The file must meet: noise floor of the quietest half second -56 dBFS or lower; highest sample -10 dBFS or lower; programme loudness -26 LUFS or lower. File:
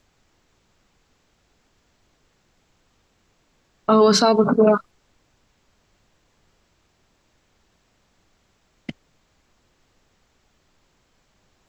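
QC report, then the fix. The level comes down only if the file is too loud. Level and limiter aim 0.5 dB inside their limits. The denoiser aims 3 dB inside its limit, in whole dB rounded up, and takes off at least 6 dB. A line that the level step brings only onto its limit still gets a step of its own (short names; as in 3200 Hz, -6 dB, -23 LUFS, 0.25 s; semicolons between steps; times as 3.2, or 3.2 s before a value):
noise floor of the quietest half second -65 dBFS: OK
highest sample -6.0 dBFS: fail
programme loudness -17.0 LUFS: fail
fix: gain -9.5 dB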